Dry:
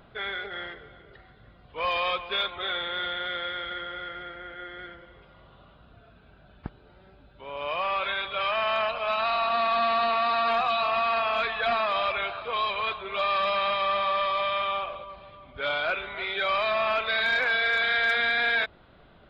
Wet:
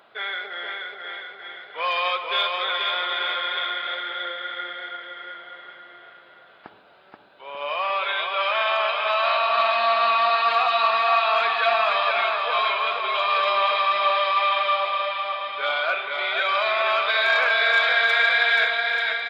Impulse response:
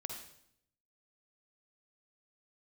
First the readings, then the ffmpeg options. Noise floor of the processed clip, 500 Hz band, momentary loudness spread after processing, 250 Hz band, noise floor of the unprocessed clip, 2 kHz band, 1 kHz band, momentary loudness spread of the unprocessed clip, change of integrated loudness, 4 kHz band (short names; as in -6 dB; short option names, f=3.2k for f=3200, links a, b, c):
-51 dBFS, +3.5 dB, 15 LU, n/a, -55 dBFS, +5.5 dB, +5.5 dB, 17 LU, +5.0 dB, +6.0 dB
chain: -filter_complex "[0:a]flanger=delay=8.9:depth=3.5:regen=89:speed=0.16:shape=triangular,aecho=1:1:480|888|1235|1530|1780:0.631|0.398|0.251|0.158|0.1,asplit=2[a][b];[1:a]atrim=start_sample=2205,asetrate=39249,aresample=44100,lowshelf=f=110:g=11[c];[b][c]afir=irnorm=-1:irlink=0,volume=-5.5dB[d];[a][d]amix=inputs=2:normalize=0,acontrast=37,highpass=570"